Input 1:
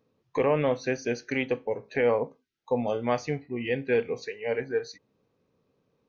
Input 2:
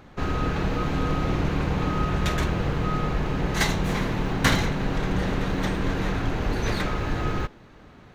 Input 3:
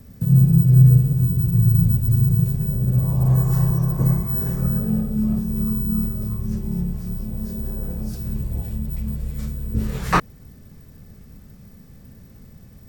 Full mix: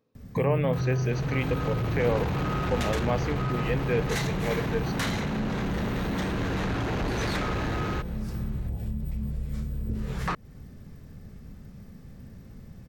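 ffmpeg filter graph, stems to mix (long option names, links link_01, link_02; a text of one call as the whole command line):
ffmpeg -i stem1.wav -i stem2.wav -i stem3.wav -filter_complex "[0:a]volume=-2.5dB[link_01];[1:a]highpass=50,dynaudnorm=framelen=290:gausssize=9:maxgain=11.5dB,adelay=550,volume=2dB[link_02];[2:a]highshelf=frequency=7100:gain=-11.5,adelay=150,volume=-0.5dB[link_03];[link_02][link_03]amix=inputs=2:normalize=0,asoftclip=type=tanh:threshold=-14dB,acompressor=threshold=-27dB:ratio=6,volume=0dB[link_04];[link_01][link_04]amix=inputs=2:normalize=0" out.wav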